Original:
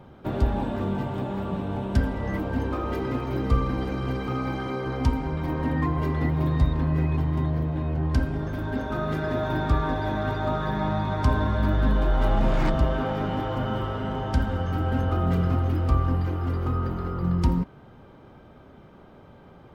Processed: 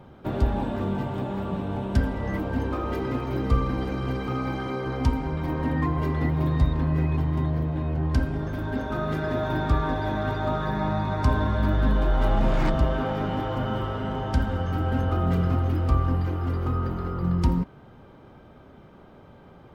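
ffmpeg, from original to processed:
-filter_complex "[0:a]asettb=1/sr,asplit=3[a][b][c];[a]atrim=end=10.654[d];[b]atrim=start=10.65:end=11.26,asetpts=PTS-STARTPTS,afade=t=in:d=0.004:c=qsin,afade=t=out:st=0.606:d=0.004:c=qsin,bandreject=f=3.2k:w=8.6[e];[c]atrim=start=11.256[f];[d][e]acrossfade=d=0.004:c1=hsin:c2=qsin[g];[g][f]acrossfade=d=0.004:c1=qsin:c2=hsin"

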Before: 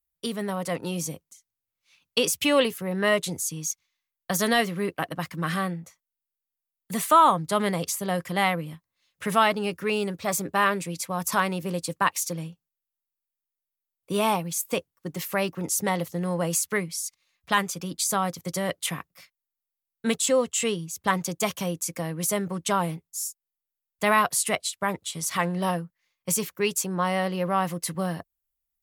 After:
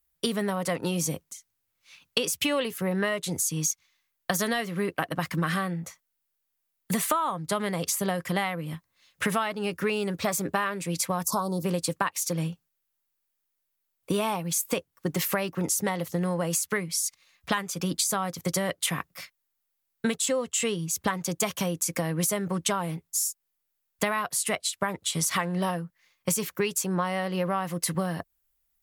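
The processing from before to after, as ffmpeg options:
-filter_complex "[0:a]asettb=1/sr,asplit=3[a][b][c];[a]atrim=end=11.244[d];[b]atrim=start=11.24:end=11.64,asetpts=PTS-STARTPTS,afade=t=in:d=0.004:c=qsin,afade=t=out:st=0.396:d=0.004:c=qsin,asuperstop=centerf=2200:order=8:qfactor=0.74[e];[c]atrim=start=11.636[f];[d][e]acrossfade=d=0.004:c1=hsin:c2=qsin[g];[g][f]acrossfade=d=0.004:c1=qsin:c2=hsin,equalizer=f=1.6k:t=o:w=0.77:g=2,acompressor=threshold=-32dB:ratio=12,volume=8.5dB"

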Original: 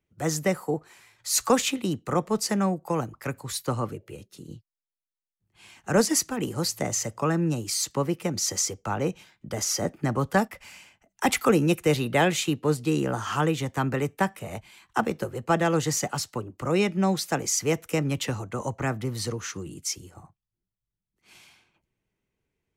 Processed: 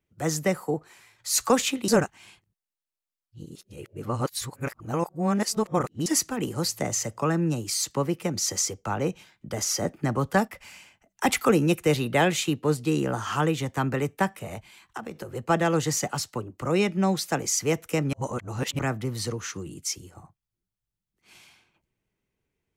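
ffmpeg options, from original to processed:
-filter_complex "[0:a]asettb=1/sr,asplit=3[a][b][c];[a]atrim=end=14.464[d];[b]atrim=start=14.46:end=15.33,asetpts=PTS-STARTPTS,afade=t=in:d=0.004:c=qsin,afade=t=out:st=0.866:d=0.004:c=qsin,acompressor=threshold=-31dB:ratio=8:attack=3.2:release=140:knee=1:detection=peak[e];[c]atrim=start=15.326[f];[d][e]acrossfade=d=0.004:c1=hsin:c2=qsin[g];[g][f]acrossfade=d=0.004:c1=qsin:c2=hsin,asplit=5[h][i][j][k][l];[h]atrim=end=1.882[m];[i]atrim=start=1.878:end=6.062,asetpts=PTS-STARTPTS,areverse[n];[j]atrim=start=6.058:end=18.132[o];[k]atrim=start=18.128:end=18.792,asetpts=PTS-STARTPTS,areverse[p];[l]atrim=start=18.788[q];[m][n]acrossfade=d=0.004:c1=hsin:c2=hsin[r];[r][o]acrossfade=d=0.004:c1=hsin:c2=hsin[s];[s][p]acrossfade=d=0.004:c1=hsin:c2=hsin[t];[t][q]acrossfade=d=0.004:c1=hsin:c2=hsin"

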